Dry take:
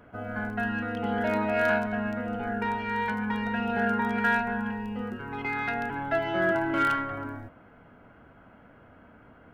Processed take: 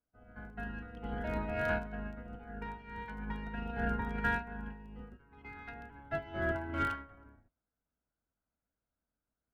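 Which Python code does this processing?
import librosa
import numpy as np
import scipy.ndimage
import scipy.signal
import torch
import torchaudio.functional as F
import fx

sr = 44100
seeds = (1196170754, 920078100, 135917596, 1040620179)

y = fx.octave_divider(x, sr, octaves=2, level_db=3.0)
y = fx.upward_expand(y, sr, threshold_db=-44.0, expansion=2.5)
y = y * librosa.db_to_amplitude(-6.5)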